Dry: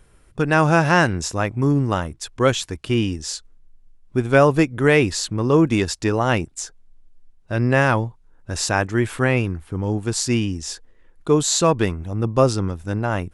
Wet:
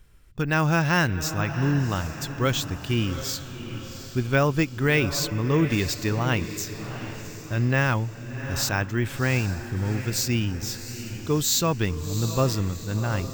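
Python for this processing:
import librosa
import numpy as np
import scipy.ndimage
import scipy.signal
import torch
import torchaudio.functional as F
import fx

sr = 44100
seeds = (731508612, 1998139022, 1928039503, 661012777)

p1 = scipy.signal.sosfilt(scipy.signal.butter(2, 7800.0, 'lowpass', fs=sr, output='sos'), x)
p2 = fx.peak_eq(p1, sr, hz=590.0, db=-9.5, octaves=3.0)
p3 = p2 + fx.echo_diffused(p2, sr, ms=735, feedback_pct=47, wet_db=-10.5, dry=0)
y = np.repeat(scipy.signal.resample_poly(p3, 1, 2), 2)[:len(p3)]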